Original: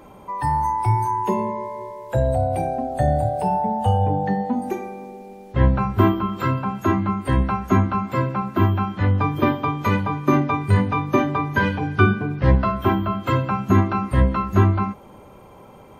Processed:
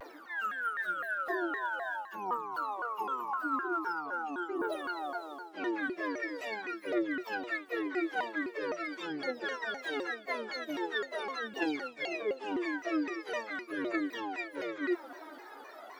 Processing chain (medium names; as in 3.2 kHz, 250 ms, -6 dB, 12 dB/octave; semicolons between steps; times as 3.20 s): frequency-domain pitch shifter +8.5 st; Chebyshev high-pass 300 Hz, order 4; reverse; compression 8:1, threshold -35 dBFS, peak gain reduction 19.5 dB; reverse; phaser 0.43 Hz, delay 3.6 ms, feedback 62%; vibrato with a chosen wave saw down 3.9 Hz, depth 250 cents